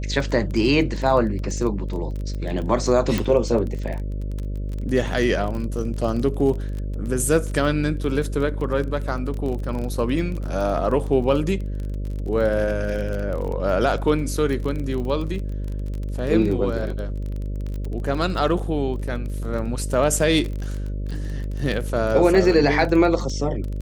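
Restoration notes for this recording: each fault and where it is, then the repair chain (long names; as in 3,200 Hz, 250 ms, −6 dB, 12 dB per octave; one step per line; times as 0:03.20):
mains buzz 50 Hz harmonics 12 −27 dBFS
surface crackle 24 per second −28 dBFS
0:03.18: click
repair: click removal
hum removal 50 Hz, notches 12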